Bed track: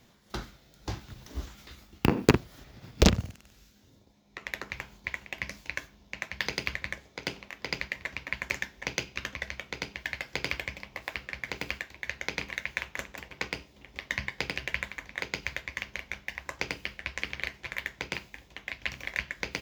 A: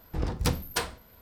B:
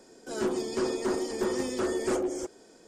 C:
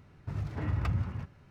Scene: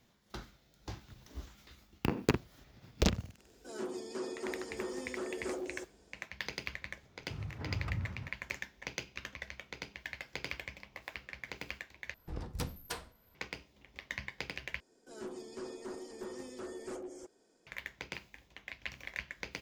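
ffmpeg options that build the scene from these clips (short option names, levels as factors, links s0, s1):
-filter_complex "[2:a]asplit=2[s0][s1];[0:a]volume=0.376[s2];[s0]highpass=170[s3];[s2]asplit=3[s4][s5][s6];[s4]atrim=end=12.144[s7];[1:a]atrim=end=1.21,asetpts=PTS-STARTPTS,volume=0.266[s8];[s5]atrim=start=13.346:end=14.804[s9];[s1]atrim=end=2.87,asetpts=PTS-STARTPTS,volume=0.178[s10];[s6]atrim=start=17.666[s11];[s3]atrim=end=2.87,asetpts=PTS-STARTPTS,volume=0.299,afade=t=in:d=0.004:c=hsin,afade=t=out:st=2.866:d=0.004:c=hsin,adelay=3380[s12];[3:a]atrim=end=1.5,asetpts=PTS-STARTPTS,volume=0.447,afade=t=in:d=0.004:c=hsin,afade=t=out:st=1.496:d=0.004:c=hsin,adelay=7030[s13];[s7][s8]acrossfade=d=0.004:c1=hsin:c2=hsin[s14];[s14][s9]acrossfade=d=0.004:c1=hsin:c2=hsin[s15];[s15][s10]acrossfade=d=0.004:c1=hsin:c2=hsin[s16];[s16][s11]acrossfade=d=0.004:c1=hsin:c2=hsin[s17];[s17][s12][s13]amix=inputs=3:normalize=0"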